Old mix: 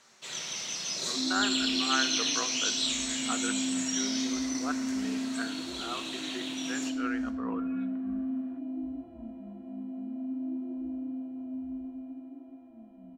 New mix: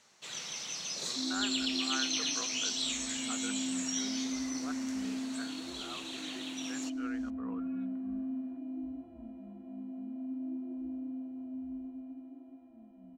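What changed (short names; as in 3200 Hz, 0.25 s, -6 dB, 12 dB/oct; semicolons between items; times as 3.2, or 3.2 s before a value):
speech -8.5 dB; second sound -4.0 dB; reverb: off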